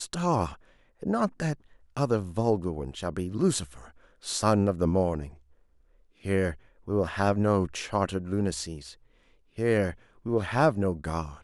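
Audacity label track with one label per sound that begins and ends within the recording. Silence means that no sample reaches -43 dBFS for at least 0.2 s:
1.020000	1.550000	sound
1.970000	3.910000	sound
4.230000	5.340000	sound
6.240000	6.560000	sound
6.880000	8.940000	sound
9.580000	9.940000	sound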